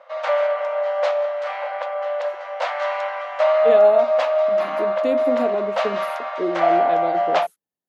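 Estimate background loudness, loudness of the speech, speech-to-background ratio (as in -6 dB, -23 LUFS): -21.0 LUFS, -25.5 LUFS, -4.5 dB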